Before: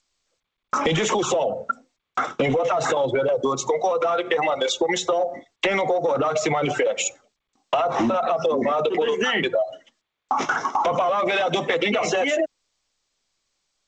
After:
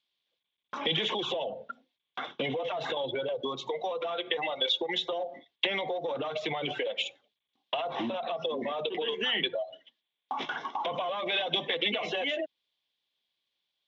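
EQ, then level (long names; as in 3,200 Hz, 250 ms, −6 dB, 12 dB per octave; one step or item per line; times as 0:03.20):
high-pass filter 120 Hz
transistor ladder low-pass 3,700 Hz, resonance 70%
notch filter 1,300 Hz, Q 5.6
0.0 dB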